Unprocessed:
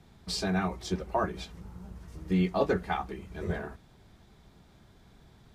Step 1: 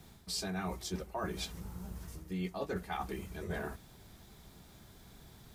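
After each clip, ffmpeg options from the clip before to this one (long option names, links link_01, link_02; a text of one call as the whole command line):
ffmpeg -i in.wav -af "aemphasis=mode=production:type=50fm,areverse,acompressor=threshold=-36dB:ratio=6,areverse,volume=1dB" out.wav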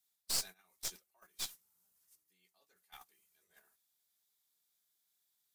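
ffmpeg -i in.wav -af "aderivative,agate=range=-19dB:threshold=-51dB:ratio=16:detection=peak,aeval=exprs='0.0447*(cos(1*acos(clip(val(0)/0.0447,-1,1)))-cos(1*PI/2))+0.0141*(cos(2*acos(clip(val(0)/0.0447,-1,1)))-cos(2*PI/2))+0.00355*(cos(6*acos(clip(val(0)/0.0447,-1,1)))-cos(6*PI/2))+0.002*(cos(7*acos(clip(val(0)/0.0447,-1,1)))-cos(7*PI/2))':channel_layout=same,volume=5dB" out.wav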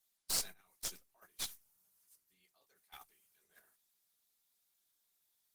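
ffmpeg -i in.wav -af "volume=2dB" -ar 48000 -c:a libopus -b:a 20k out.opus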